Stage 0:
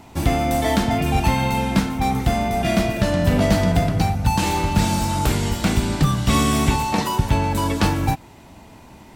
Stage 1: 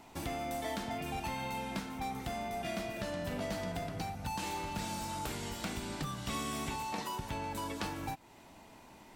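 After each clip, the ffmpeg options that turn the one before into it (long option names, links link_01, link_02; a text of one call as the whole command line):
ffmpeg -i in.wav -af "equalizer=frequency=66:width=0.34:gain=-10,acompressor=threshold=-32dB:ratio=2,volume=-8.5dB" out.wav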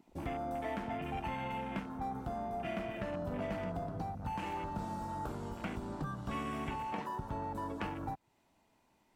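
ffmpeg -i in.wav -af "afwtdn=0.00708" out.wav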